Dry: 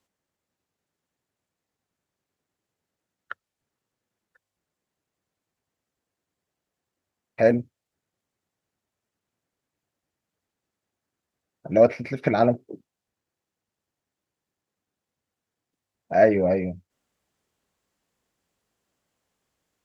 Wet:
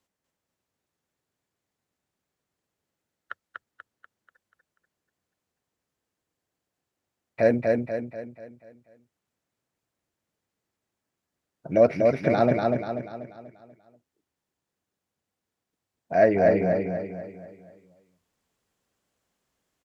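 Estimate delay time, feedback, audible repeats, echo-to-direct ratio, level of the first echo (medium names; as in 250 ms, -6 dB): 243 ms, 45%, 5, -2.0 dB, -3.0 dB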